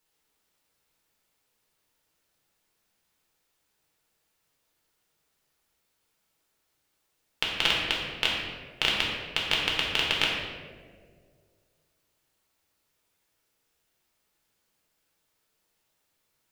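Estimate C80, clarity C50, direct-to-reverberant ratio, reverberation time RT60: 3.0 dB, 1.0 dB, -3.5 dB, 2.0 s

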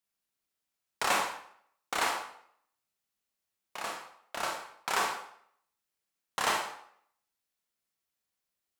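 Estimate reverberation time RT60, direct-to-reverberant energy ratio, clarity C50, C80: 0.65 s, 1.0 dB, 5.5 dB, 8.5 dB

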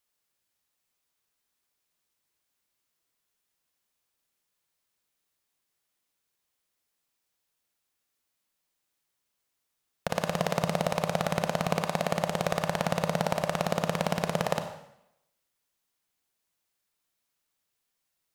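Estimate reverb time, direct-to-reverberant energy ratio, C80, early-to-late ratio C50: 0.80 s, 7.0 dB, 11.0 dB, 8.5 dB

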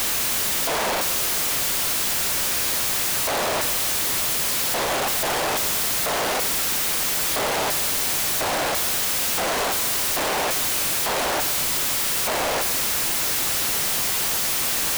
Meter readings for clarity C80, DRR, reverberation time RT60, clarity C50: 14.5 dB, 11.0 dB, 1.7 s, 13.0 dB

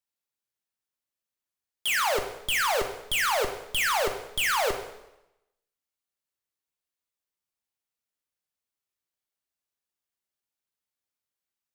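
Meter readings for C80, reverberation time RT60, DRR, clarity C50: 10.5 dB, 0.90 s, 4.5 dB, 8.5 dB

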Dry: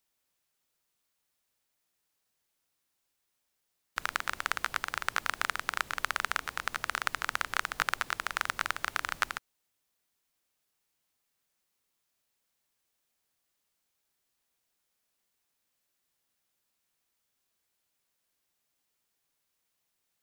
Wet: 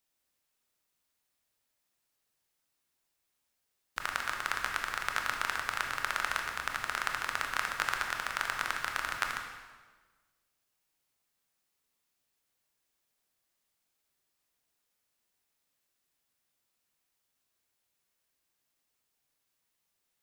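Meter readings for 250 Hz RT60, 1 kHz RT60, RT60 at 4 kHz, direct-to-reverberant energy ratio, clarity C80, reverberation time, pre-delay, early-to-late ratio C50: 1.5 s, 1.3 s, 1.2 s, 2.0 dB, 6.0 dB, 1.4 s, 20 ms, 4.5 dB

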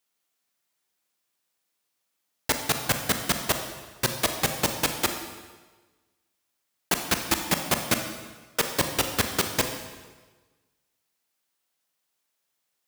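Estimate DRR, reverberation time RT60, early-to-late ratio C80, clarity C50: 5.5 dB, 1.3 s, 8.5 dB, 6.5 dB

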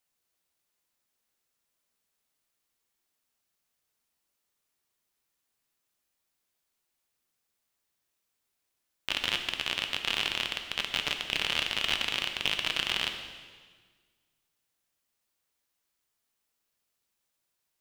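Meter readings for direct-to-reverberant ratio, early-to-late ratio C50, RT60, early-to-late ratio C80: 5.0 dB, 7.0 dB, 1.6 s, 8.5 dB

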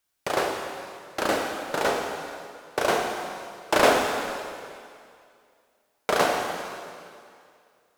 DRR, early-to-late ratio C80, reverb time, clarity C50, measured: 1.5 dB, 4.0 dB, 2.3 s, 3.0 dB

